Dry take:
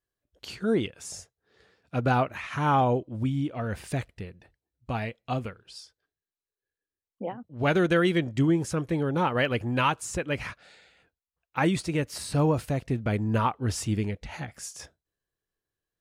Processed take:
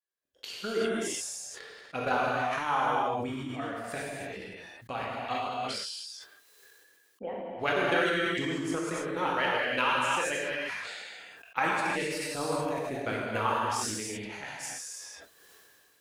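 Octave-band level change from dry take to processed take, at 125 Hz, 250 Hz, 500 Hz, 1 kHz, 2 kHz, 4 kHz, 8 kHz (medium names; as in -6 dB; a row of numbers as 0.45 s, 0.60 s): -14.5 dB, -8.0 dB, -2.5 dB, 0.0 dB, +2.5 dB, +2.5 dB, +2.0 dB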